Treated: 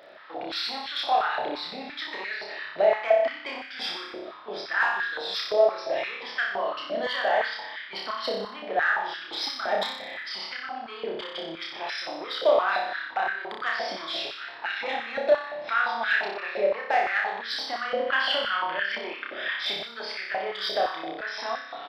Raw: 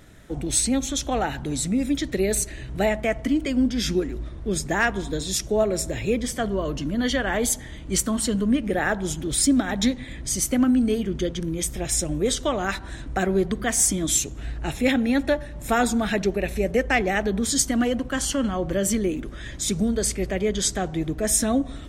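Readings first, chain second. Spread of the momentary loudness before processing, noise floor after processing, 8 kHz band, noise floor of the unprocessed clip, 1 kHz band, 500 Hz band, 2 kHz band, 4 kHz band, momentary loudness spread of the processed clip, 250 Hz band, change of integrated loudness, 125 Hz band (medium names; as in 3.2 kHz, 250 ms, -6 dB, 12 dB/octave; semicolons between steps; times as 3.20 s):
7 LU, -42 dBFS, under -25 dB, -38 dBFS, +3.0 dB, -1.5 dB, +2.5 dB, +1.0 dB, 11 LU, -21.0 dB, -4.0 dB, under -25 dB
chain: resampled via 11.025 kHz; compression 12:1, threshold -25 dBFS, peak gain reduction 11 dB; saturation -20.5 dBFS, distortion -21 dB; on a send: flutter echo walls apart 5.2 m, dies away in 0.8 s; on the sum: time-frequency box 18.07–19.87 s, 1.4–3.6 kHz +6 dB; step-sequenced high-pass 5.8 Hz 600–1600 Hz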